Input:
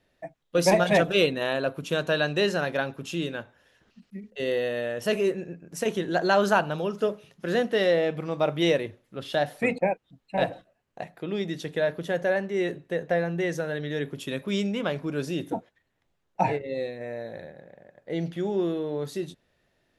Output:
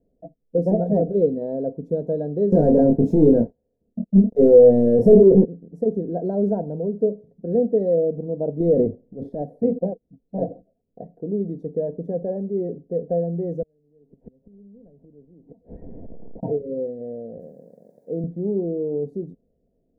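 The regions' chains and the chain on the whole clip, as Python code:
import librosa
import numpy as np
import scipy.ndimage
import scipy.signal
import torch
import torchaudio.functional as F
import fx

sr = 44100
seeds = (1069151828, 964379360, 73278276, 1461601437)

y = fx.chain(x, sr, fx.leveller(passes=5),
    fx.doubler(ms=26.0, db=-5.0), at=(2.52, 5.45))
y = fx.chain(y, sr, fx.high_shelf(hz=5900.0, db=-6.0),
    fx.leveller(passes=1),
    fx.transient(attack_db=-9, sustain_db=9), at=(8.6, 9.42))
y = fx.chain(y, sr, fx.delta_mod(bps=16000, step_db=-32.5),
    fx.gate_flip(shuts_db=-27.0, range_db=-39),
    fx.band_squash(depth_pct=70), at=(13.62, 16.43))
y = fx.chain(y, sr, fx.crossing_spikes(level_db=-31.0),
    fx.highpass(hz=140.0, slope=12), at=(17.4, 18.24))
y = scipy.signal.sosfilt(scipy.signal.cheby2(4, 40, 1100.0, 'lowpass', fs=sr, output='sos'), y)
y = y + 0.47 * np.pad(y, (int(4.3 * sr / 1000.0), 0))[:len(y)]
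y = y * 10.0 ** (4.0 / 20.0)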